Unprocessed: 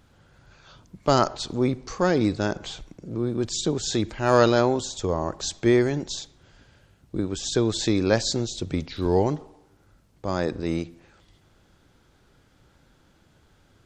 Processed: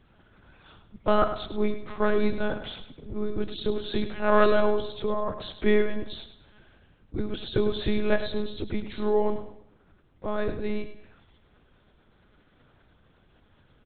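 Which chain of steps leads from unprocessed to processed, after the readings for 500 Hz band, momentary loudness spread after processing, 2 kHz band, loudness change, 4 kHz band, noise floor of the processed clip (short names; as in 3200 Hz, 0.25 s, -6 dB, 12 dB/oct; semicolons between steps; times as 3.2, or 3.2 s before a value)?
-2.0 dB, 13 LU, -1.0 dB, -3.5 dB, -6.5 dB, -62 dBFS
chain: monotone LPC vocoder at 8 kHz 210 Hz; feedback echo 0.103 s, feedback 34%, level -11 dB; gain -1.5 dB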